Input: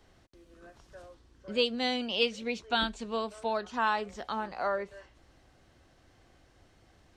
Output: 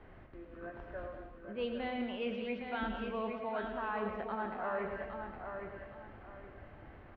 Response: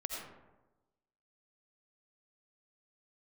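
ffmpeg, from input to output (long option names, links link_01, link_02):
-filter_complex "[0:a]lowpass=frequency=2300:width=0.5412,lowpass=frequency=2300:width=1.3066,areverse,acompressor=threshold=-43dB:ratio=6,areverse,asplit=2[link_01][link_02];[link_02]adelay=29,volume=-12.5dB[link_03];[link_01][link_03]amix=inputs=2:normalize=0,aecho=1:1:812|1624|2436|3248:0.473|0.137|0.0398|0.0115,asplit=2[link_04][link_05];[1:a]atrim=start_sample=2205,afade=type=out:start_time=0.21:duration=0.01,atrim=end_sample=9702,adelay=109[link_06];[link_05][link_06]afir=irnorm=-1:irlink=0,volume=-6dB[link_07];[link_04][link_07]amix=inputs=2:normalize=0,volume=6.5dB"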